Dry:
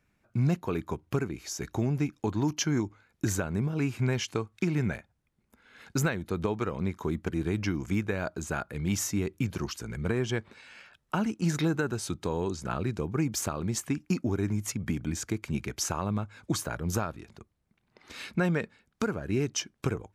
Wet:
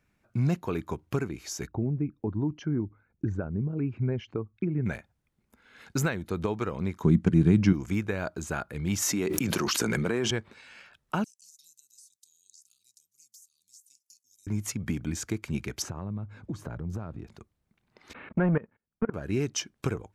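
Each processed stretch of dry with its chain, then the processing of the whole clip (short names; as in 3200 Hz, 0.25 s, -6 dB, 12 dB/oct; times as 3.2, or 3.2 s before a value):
1.67–4.86 formant sharpening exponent 1.5 + tape spacing loss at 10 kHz 42 dB
7.03–7.73 Chebyshev low-pass 11000 Hz, order 8 + bell 170 Hz +15 dB 1.6 oct
9.02–10.31 HPF 210 Hz + fast leveller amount 100%
11.24–14.47 inverse Chebyshev high-pass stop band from 1800 Hz, stop band 60 dB + compressor 16:1, threshold -50 dBFS
15.82–17.27 HPF 94 Hz + tilt -4 dB/oct + compressor 3:1, threshold -35 dBFS
18.13–19.14 sample leveller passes 2 + Gaussian blur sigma 4.7 samples + level quantiser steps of 23 dB
whole clip: dry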